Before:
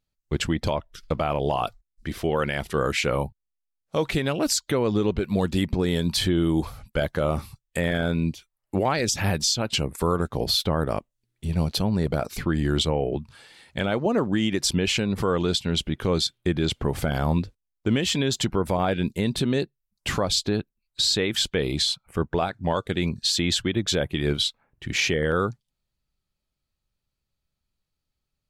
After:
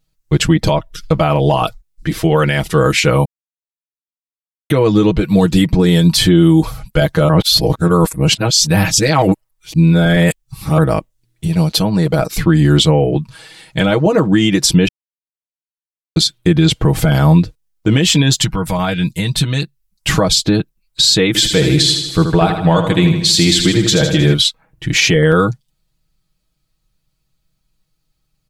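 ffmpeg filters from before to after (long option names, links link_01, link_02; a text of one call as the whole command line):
ffmpeg -i in.wav -filter_complex "[0:a]asettb=1/sr,asplit=3[link_01][link_02][link_03];[link_01]atrim=end=11.474[link_04];[link_02]atrim=start=11.47:end=12.19,asetpts=PTS-STARTPTS,afade=type=in:duration=0.004:curve=qsin,afade=type=out:start_time=0.716:duration=0.004:curve=qsin,lowshelf=frequency=130:gain=-11[link_05];[link_03]atrim=start=12.186[link_06];[link_04][link_05]acrossfade=duration=0.004:curve1=hsin:curve2=qsin[link_07];[link_07][link_06]acrossfade=duration=0.004:curve1=qsin:curve2=hsin,asettb=1/sr,asplit=3[link_08][link_09][link_10];[link_08]atrim=end=18.324[link_11];[link_09]atrim=start=18.32:end=20.09,asetpts=PTS-STARTPTS,afade=type=in:duration=0.004:curve=qsin,afade=type=out:start_time=1.766:duration=0.004:curve=qsin,equalizer=frequency=370:width=0.68:gain=-11[link_12];[link_10]atrim=start=20.086[link_13];[link_11][link_12]acrossfade=duration=0.004:curve1=hsin:curve2=qsin[link_14];[link_14][link_13]acrossfade=duration=0.004:curve1=qsin:curve2=hsin,asettb=1/sr,asplit=3[link_15][link_16][link_17];[link_15]atrim=end=21.274[link_18];[link_16]atrim=start=21.27:end=24.34,asetpts=PTS-STARTPTS,afade=type=in:duration=0.004:curve=qsin,afade=type=out:start_time=3.066:duration=0.004:curve=qsin,aecho=1:1:78|156|234|312|390|468|546:0.422|0.24|0.137|0.0781|0.0445|0.0254|0.0145,atrim=end_sample=135387[link_19];[link_17]atrim=start=24.336[link_20];[link_18][link_19]acrossfade=duration=0.004:curve1=hsin:curve2=qsin[link_21];[link_21][link_20]acrossfade=duration=0.004:curve1=qsin:curve2=hsin,asplit=7[link_22][link_23][link_24][link_25][link_26][link_27][link_28];[link_22]atrim=end=3.25,asetpts=PTS-STARTPTS,afade=type=out:start_time=3.246:duration=0.004:curve=hsin[link_29];[link_23]atrim=start=3.25:end=4.7,asetpts=PTS-STARTPTS,volume=0[link_30];[link_24]atrim=start=4.7:end=7.292,asetpts=PTS-STARTPTS,afade=type=in:duration=0.004:curve=hsin[link_31];[link_25]atrim=start=7.288:end=10.782,asetpts=PTS-STARTPTS,areverse[link_32];[link_26]atrim=start=10.778:end=14.88,asetpts=PTS-STARTPTS,afade=type=out:start_time=4.098:duration=0.004:curve=hsin[link_33];[link_27]atrim=start=14.88:end=16.16,asetpts=PTS-STARTPTS,volume=0[link_34];[link_28]atrim=start=16.16,asetpts=PTS-STARTPTS,afade=type=in:duration=0.004:curve=hsin[link_35];[link_29][link_30][link_31]concat=n=3:v=0:a=1[link_36];[link_36][link_32]acrossfade=duration=0.004:curve1=hsin:curve2=hsin[link_37];[link_33][link_34][link_35]concat=n=3:v=0:a=1[link_38];[link_37][link_38]acrossfade=duration=0.004:curve1=hsin:curve2=hsin,bass=frequency=250:gain=4,treble=frequency=4000:gain=3,aecho=1:1:6.3:0.78,alimiter=level_in=9.5dB:limit=-1dB:release=50:level=0:latency=1,volume=-1dB" out.wav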